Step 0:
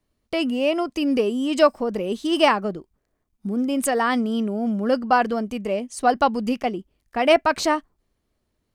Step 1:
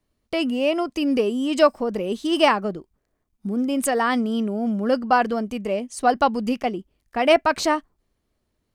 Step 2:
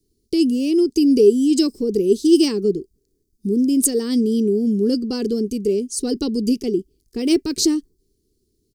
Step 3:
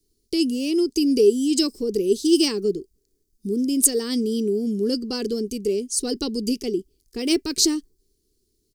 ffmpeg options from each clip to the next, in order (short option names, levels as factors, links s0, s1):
-af anull
-af "firequalizer=gain_entry='entry(230,0);entry(410,9);entry(610,-28);entry(1300,-26);entry(4700,5)':delay=0.05:min_phase=1,volume=1.68"
-af "equalizer=f=150:w=0.31:g=-8.5,volume=1.26"